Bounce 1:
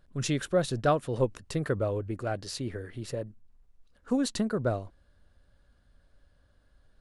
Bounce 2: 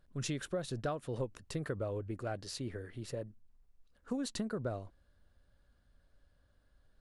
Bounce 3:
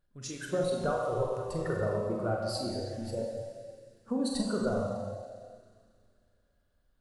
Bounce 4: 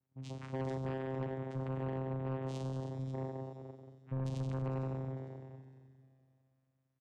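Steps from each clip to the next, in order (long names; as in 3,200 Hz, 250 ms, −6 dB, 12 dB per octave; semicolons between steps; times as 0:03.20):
downward compressor 6 to 1, threshold −27 dBFS, peak gain reduction 8 dB; level −5.5 dB
high-shelf EQ 8,400 Hz +4 dB; four-comb reverb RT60 2.8 s, combs from 31 ms, DRR −3 dB; noise reduction from a noise print of the clip's start 13 dB; level +4.5 dB
channel vocoder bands 4, saw 132 Hz; repeating echo 454 ms, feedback 27%, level −17 dB; soft clipping −31.5 dBFS, distortion −10 dB; level −1.5 dB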